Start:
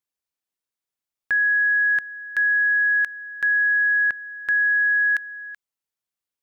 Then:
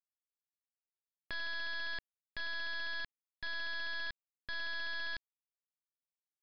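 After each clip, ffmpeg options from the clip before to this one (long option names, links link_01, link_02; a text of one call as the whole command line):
ffmpeg -i in.wav -af "equalizer=frequency=1400:width=1.7:gain=-13.5,aresample=11025,acrusher=bits=3:dc=4:mix=0:aa=0.000001,aresample=44100,volume=-5dB" out.wav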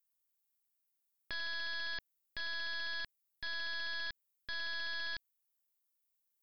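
ffmpeg -i in.wav -af "aemphasis=mode=production:type=50fm,volume=-1.5dB" out.wav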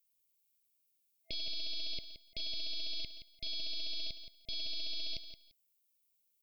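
ffmpeg -i in.wav -filter_complex "[0:a]afftfilt=real='re*(1-between(b*sr/4096,660,2100))':imag='im*(1-between(b*sr/4096,660,2100))':win_size=4096:overlap=0.75,asplit=2[link_01][link_02];[link_02]aecho=0:1:172|344:0.282|0.0507[link_03];[link_01][link_03]amix=inputs=2:normalize=0,volume=4.5dB" out.wav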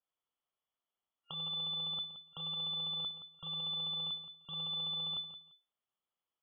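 ffmpeg -i in.wav -af "lowpass=frequency=3000:width_type=q:width=0.5098,lowpass=frequency=3000:width_type=q:width=0.6013,lowpass=frequency=3000:width_type=q:width=0.9,lowpass=frequency=3000:width_type=q:width=2.563,afreqshift=-3500,adynamicequalizer=threshold=0.002:dfrequency=1500:dqfactor=0.7:tfrequency=1500:tqfactor=0.7:attack=5:release=100:ratio=0.375:range=2:mode=cutabove:tftype=highshelf,volume=1.5dB" out.wav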